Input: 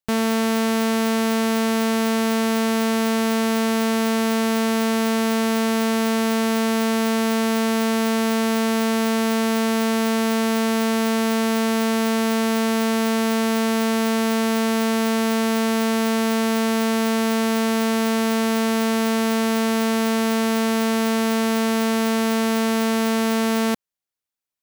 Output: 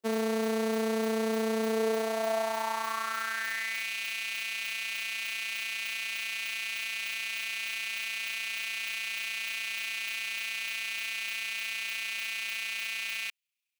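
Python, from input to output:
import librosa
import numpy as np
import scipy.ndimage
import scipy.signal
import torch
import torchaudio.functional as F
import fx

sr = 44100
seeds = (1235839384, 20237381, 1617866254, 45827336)

y = 10.0 ** (-25.5 / 20.0) * np.tanh(x / 10.0 ** (-25.5 / 20.0))
y = fx.filter_sweep_highpass(y, sr, from_hz=380.0, to_hz=2500.0, start_s=2.99, end_s=6.99, q=4.8)
y = fx.stretch_grains(y, sr, factor=0.56, grain_ms=67.0)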